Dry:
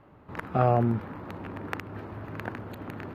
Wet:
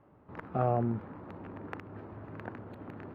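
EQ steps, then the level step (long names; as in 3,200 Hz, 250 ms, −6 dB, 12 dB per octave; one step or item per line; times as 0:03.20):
high-pass filter 660 Hz 6 dB per octave
spectral tilt −4.5 dB per octave
−5.5 dB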